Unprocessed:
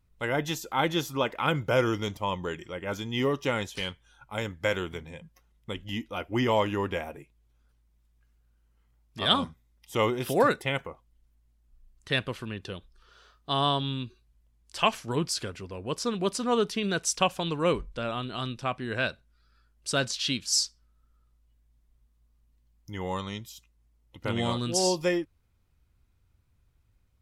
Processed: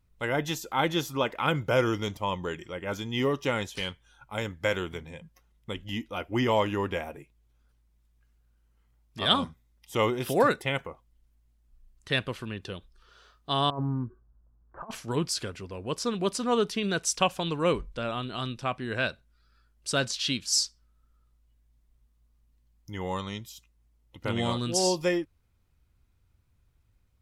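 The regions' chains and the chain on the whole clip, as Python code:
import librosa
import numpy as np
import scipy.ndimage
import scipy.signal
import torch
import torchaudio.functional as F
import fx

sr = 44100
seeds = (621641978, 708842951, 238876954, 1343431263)

y = fx.chain(x, sr, fx.steep_lowpass(hz=1500.0, slope=48),
    fx.over_compress(threshold_db=-31.0, ratio=-0.5),
    fx.doppler_dist(depth_ms=0.13), at=(13.7, 14.91))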